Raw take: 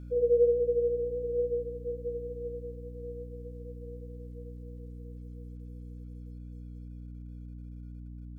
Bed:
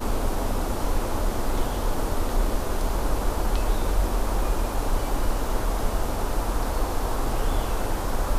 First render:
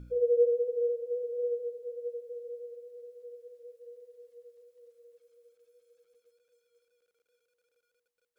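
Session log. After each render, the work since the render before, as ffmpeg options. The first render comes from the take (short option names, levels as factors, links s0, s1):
-af "bandreject=f=60:t=h:w=4,bandreject=f=120:t=h:w=4,bandreject=f=180:t=h:w=4,bandreject=f=240:t=h:w=4,bandreject=f=300:t=h:w=4,bandreject=f=360:t=h:w=4,bandreject=f=420:t=h:w=4,bandreject=f=480:t=h:w=4"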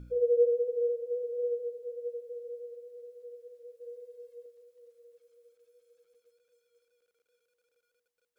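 -filter_complex "[0:a]asettb=1/sr,asplit=3[s0][s1][s2];[s0]atrim=end=3.804[s3];[s1]atrim=start=3.8:end=4.46,asetpts=PTS-STARTPTS,afade=t=in:d=0.004:c=qsin,afade=t=out:st=0.656:d=0.004:c=qsin,aecho=1:1:1.9:0.71,atrim=end_sample=29106[s4];[s2]atrim=start=4.456[s5];[s3][s4]acrossfade=d=0.004:c1=hsin:c2=qsin[s6];[s6][s5]acrossfade=d=0.004:c1=qsin:c2=hsin"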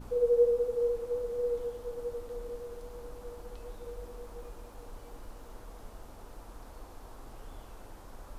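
-filter_complex "[1:a]volume=0.075[s0];[0:a][s0]amix=inputs=2:normalize=0"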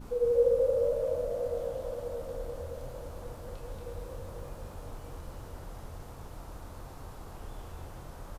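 -filter_complex "[0:a]asplit=2[s0][s1];[s1]adelay=28,volume=0.596[s2];[s0][s2]amix=inputs=2:normalize=0,asplit=2[s3][s4];[s4]asplit=6[s5][s6][s7][s8][s9][s10];[s5]adelay=231,afreqshift=48,volume=0.596[s11];[s6]adelay=462,afreqshift=96,volume=0.279[s12];[s7]adelay=693,afreqshift=144,volume=0.132[s13];[s8]adelay=924,afreqshift=192,volume=0.0617[s14];[s9]adelay=1155,afreqshift=240,volume=0.0292[s15];[s10]adelay=1386,afreqshift=288,volume=0.0136[s16];[s11][s12][s13][s14][s15][s16]amix=inputs=6:normalize=0[s17];[s3][s17]amix=inputs=2:normalize=0"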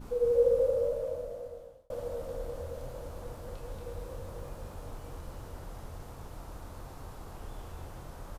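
-filter_complex "[0:a]asplit=2[s0][s1];[s0]atrim=end=1.9,asetpts=PTS-STARTPTS,afade=t=out:st=0.59:d=1.31[s2];[s1]atrim=start=1.9,asetpts=PTS-STARTPTS,afade=t=in:d=0.004:c=hsin[s3];[s2][s3]concat=n=2:v=0:a=1"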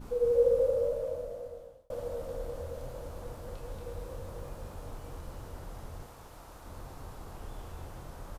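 -filter_complex "[0:a]asettb=1/sr,asplit=3[s0][s1][s2];[s0]atrim=end=6.064[s3];[s1]atrim=start=6.06:end=6.66,asetpts=PTS-STARTPTS,afade=t=in:d=0.004:c=qsin,afade=t=out:st=0.596:d=0.004:c=qsin,lowshelf=f=380:g=-8.5[s4];[s2]atrim=start=6.656[s5];[s3][s4]acrossfade=d=0.004:c1=hsin:c2=qsin[s6];[s6][s5]acrossfade=d=0.004:c1=qsin:c2=hsin"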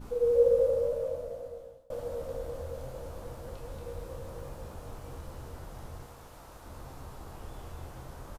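-filter_complex "[0:a]asplit=2[s0][s1];[s1]adelay=15,volume=0.299[s2];[s0][s2]amix=inputs=2:normalize=0,aecho=1:1:196:0.126"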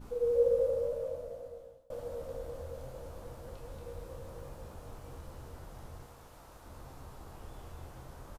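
-af "volume=0.631"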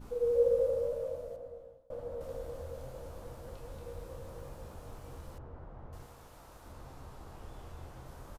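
-filter_complex "[0:a]asettb=1/sr,asplit=3[s0][s1][s2];[s0]atrim=end=1.364[s3];[s1]atrim=start=1.36:end=2.21,asetpts=PTS-STARTPTS,afade=t=in:d=0.004:c=qsin,afade=t=out:st=0.846:d=0.004:c=qsin,highshelf=f=2700:g=-12[s4];[s2]atrim=start=2.206[s5];[s3][s4]acrossfade=d=0.004:c1=hsin:c2=qsin[s6];[s6][s5]acrossfade=d=0.004:c1=qsin:c2=hsin,asettb=1/sr,asplit=3[s7][s8][s9];[s7]atrim=end=5.384[s10];[s8]atrim=start=5.38:end=5.93,asetpts=PTS-STARTPTS,afade=t=in:d=0.004:c=qsin,afade=t=out:st=0.546:d=0.004:c=qsin,lowpass=1400[s11];[s9]atrim=start=5.926[s12];[s10][s11]acrossfade=d=0.004:c1=hsin:c2=qsin[s13];[s13][s12]acrossfade=d=0.004:c1=qsin:c2=hsin,asettb=1/sr,asplit=3[s14][s15][s16];[s14]atrim=end=6.724[s17];[s15]atrim=start=6.72:end=8.06,asetpts=PTS-STARTPTS,afade=t=in:d=0.004:c=qsin,afade=t=out:st=1.336:d=0.004:c=qsin,highshelf=f=8700:g=-5.5[s18];[s16]atrim=start=8.056[s19];[s17][s18]acrossfade=d=0.004:c1=hsin:c2=qsin[s20];[s20][s19]acrossfade=d=0.004:c1=qsin:c2=hsin"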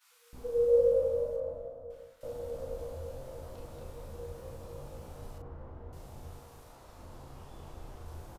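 -filter_complex "[0:a]asplit=2[s0][s1];[s1]adelay=36,volume=0.596[s2];[s0][s2]amix=inputs=2:normalize=0,acrossover=split=1500[s3][s4];[s3]adelay=330[s5];[s5][s4]amix=inputs=2:normalize=0"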